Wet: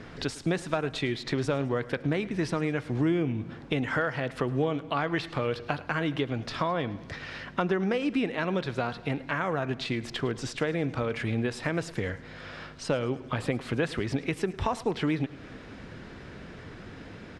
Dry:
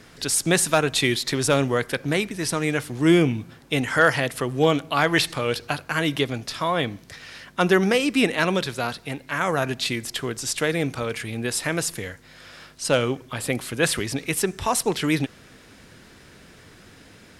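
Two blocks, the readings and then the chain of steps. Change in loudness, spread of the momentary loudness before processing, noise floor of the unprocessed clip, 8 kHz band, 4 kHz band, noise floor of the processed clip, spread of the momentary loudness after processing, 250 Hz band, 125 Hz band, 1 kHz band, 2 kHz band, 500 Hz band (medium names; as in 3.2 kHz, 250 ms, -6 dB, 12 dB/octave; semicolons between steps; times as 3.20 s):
-7.0 dB, 10 LU, -50 dBFS, -20.0 dB, -11.5 dB, -45 dBFS, 15 LU, -5.0 dB, -3.5 dB, -6.5 dB, -8.5 dB, -6.5 dB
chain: compression 6:1, threshold -30 dBFS, peak gain reduction 17 dB; tape spacing loss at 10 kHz 24 dB; on a send: feedback delay 107 ms, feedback 55%, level -19 dB; on the sum: trim +6.5 dB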